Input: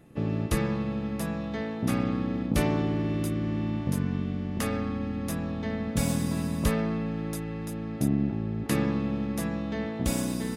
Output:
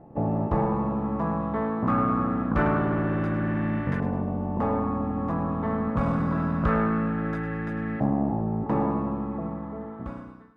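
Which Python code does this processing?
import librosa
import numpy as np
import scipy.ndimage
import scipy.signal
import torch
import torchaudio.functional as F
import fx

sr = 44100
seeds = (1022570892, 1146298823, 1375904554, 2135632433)

p1 = fx.fade_out_tail(x, sr, length_s=2.1)
p2 = 10.0 ** (-27.0 / 20.0) * (np.abs((p1 / 10.0 ** (-27.0 / 20.0) + 3.0) % 4.0 - 2.0) - 1.0)
p3 = p1 + F.gain(torch.from_numpy(p2), -5.0).numpy()
p4 = fx.spec_repair(p3, sr, seeds[0], start_s=9.33, length_s=0.64, low_hz=790.0, high_hz=12000.0, source='both')
p5 = fx.filter_lfo_lowpass(p4, sr, shape='saw_up', hz=0.25, low_hz=800.0, high_hz=1800.0, q=3.9)
y = fx.echo_feedback(p5, sr, ms=104, feedback_pct=45, wet_db=-12)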